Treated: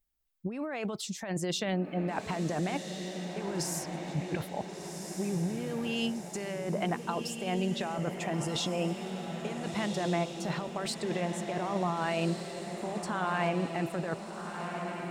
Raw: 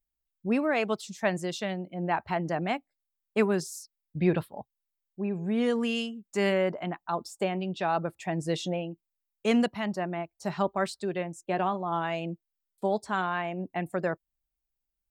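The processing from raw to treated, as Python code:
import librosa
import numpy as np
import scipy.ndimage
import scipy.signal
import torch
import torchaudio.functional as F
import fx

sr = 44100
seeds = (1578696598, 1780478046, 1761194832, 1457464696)

y = fx.over_compress(x, sr, threshold_db=-33.0, ratio=-1.0)
y = fx.echo_diffused(y, sr, ms=1466, feedback_pct=54, wet_db=-6)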